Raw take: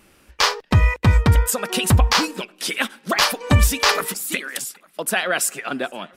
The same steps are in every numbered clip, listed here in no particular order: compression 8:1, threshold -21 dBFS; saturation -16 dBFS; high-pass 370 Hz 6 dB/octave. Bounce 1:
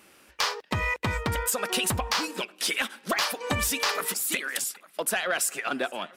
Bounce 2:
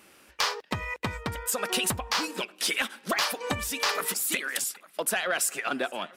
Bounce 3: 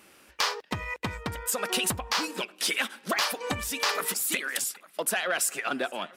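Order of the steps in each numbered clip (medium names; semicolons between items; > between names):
high-pass > compression > saturation; compression > high-pass > saturation; compression > saturation > high-pass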